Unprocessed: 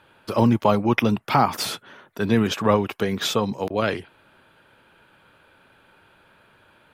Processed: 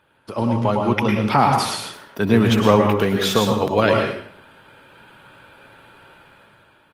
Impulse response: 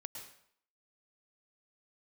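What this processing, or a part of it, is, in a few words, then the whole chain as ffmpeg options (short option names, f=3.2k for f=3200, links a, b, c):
speakerphone in a meeting room: -filter_complex "[1:a]atrim=start_sample=2205[a];[0:a][a]afir=irnorm=-1:irlink=0,asplit=2[b][c];[c]adelay=120,highpass=300,lowpass=3.4k,asoftclip=type=hard:threshold=-16.5dB,volume=-22dB[d];[b][d]amix=inputs=2:normalize=0,dynaudnorm=f=200:g=9:m=11dB,volume=1dB" -ar 48000 -c:a libopus -b:a 32k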